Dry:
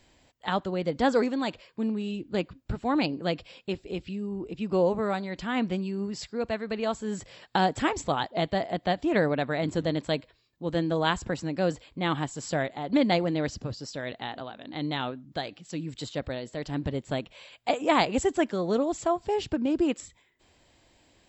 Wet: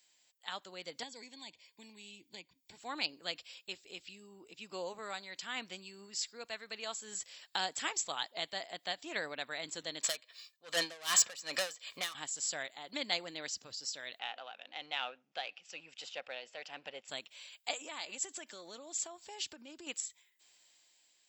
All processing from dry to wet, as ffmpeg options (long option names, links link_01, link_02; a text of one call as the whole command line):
ffmpeg -i in.wav -filter_complex "[0:a]asettb=1/sr,asplit=3[link_01][link_02][link_03];[link_01]atrim=end=1.034[link_04];[link_02]atrim=start=1.03:end=2.77,asetpts=PTS-STARTPTS,afade=type=in:duration=0.004:curve=qsin,afade=type=out:start_time=1.736:duration=0.004:curve=qsin,aecho=1:1:0.9:0.42,atrim=end_sample=76734,acrossover=split=200|610|1900[link_05][link_06][link_07][link_08];[link_05]acompressor=threshold=-41dB:ratio=3[link_09];[link_06]acompressor=threshold=-39dB:ratio=3[link_10];[link_07]acompressor=threshold=-47dB:ratio=3[link_11];[link_08]acompressor=threshold=-51dB:ratio=3[link_12];[link_09][link_10][link_11][link_12]amix=inputs=4:normalize=0,asuperstop=centerf=1300:order=4:qfactor=2[link_13];[link_03]atrim=start=2.766[link_14];[link_04][link_13]acrossfade=duration=0.004:curve1=hsin:curve2=qsin[link_15];[link_15][link_14]acrossfade=duration=0.004:curve1=qsin:curve2=hsin,asettb=1/sr,asplit=3[link_16][link_17][link_18];[link_16]atrim=end=10.034[link_19];[link_17]atrim=start=10.03:end=12.15,asetpts=PTS-STARTPTS,afade=type=in:duration=0.004:curve=qsin,afade=type=out:start_time=2.116:duration=0.004:curve=qsin,aecho=1:1:1.7:0.46,atrim=end_sample=93492,asplit=2[link_20][link_21];[link_21]highpass=frequency=720:poles=1,volume=27dB,asoftclip=type=tanh:threshold=-10dB[link_22];[link_20][link_22]amix=inputs=2:normalize=0,lowpass=frequency=4500:poles=1,volume=-6dB,aeval=exprs='val(0)*pow(10,-22*(0.5-0.5*cos(2*PI*2.6*n/s))/20)':channel_layout=same[link_23];[link_18]atrim=start=12.146[link_24];[link_19][link_23]acrossfade=duration=0.004:curve1=hsin:curve2=qsin[link_25];[link_25][link_24]acrossfade=duration=0.004:curve1=qsin:curve2=hsin,asettb=1/sr,asplit=3[link_26][link_27][link_28];[link_26]atrim=end=14.194[link_29];[link_27]atrim=start=14.19:end=17.08,asetpts=PTS-STARTPTS,afade=type=in:duration=0.004:curve=qsin,afade=type=out:start_time=2.886:duration=0.004:curve=qsin,aeval=exprs='if(lt(val(0),0),0.708*val(0),val(0))':channel_layout=same,highpass=200,equalizer=frequency=300:width_type=q:width=4:gain=-6,equalizer=frequency=520:width_type=q:width=4:gain=7,equalizer=frequency=760:width_type=q:width=4:gain=9,equalizer=frequency=1400:width_type=q:width=4:gain=5,equalizer=frequency=2600:width_type=q:width=4:gain=10,equalizer=frequency=4100:width_type=q:width=4:gain=-9,lowpass=frequency=5400:width=0.5412,lowpass=frequency=5400:width=1.3066[link_30];[link_28]atrim=start=17.076[link_31];[link_29][link_30]acrossfade=duration=0.004:curve1=hsin:curve2=qsin[link_32];[link_32][link_31]acrossfade=duration=0.004:curve1=qsin:curve2=hsin,asettb=1/sr,asplit=3[link_33][link_34][link_35];[link_33]atrim=end=17.804[link_36];[link_34]atrim=start=17.8:end=19.87,asetpts=PTS-STARTPTS,afade=type=in:duration=0.004:curve=qsin,afade=type=out:start_time=2.066:duration=0.004:curve=qsin,aecho=1:1:3.4:0.33,atrim=end_sample=91287,acompressor=threshold=-28dB:ratio=10:attack=3.2:release=140:knee=1:detection=peak[link_37];[link_35]atrim=start=19.866[link_38];[link_36][link_37]acrossfade=duration=0.004:curve1=hsin:curve2=qsin[link_39];[link_39][link_38]acrossfade=duration=0.004:curve1=qsin:curve2=hsin,dynaudnorm=framelen=120:gausssize=11:maxgain=5dB,aderivative" out.wav